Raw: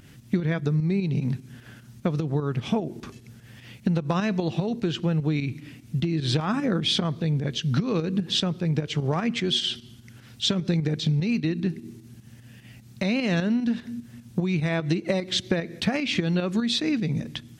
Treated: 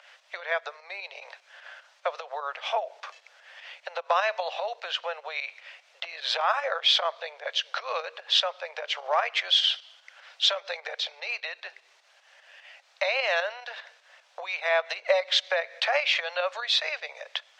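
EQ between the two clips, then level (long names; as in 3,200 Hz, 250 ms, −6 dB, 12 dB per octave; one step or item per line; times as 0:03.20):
Butterworth high-pass 550 Hz 72 dB per octave
high-frequency loss of the air 160 metres
+7.0 dB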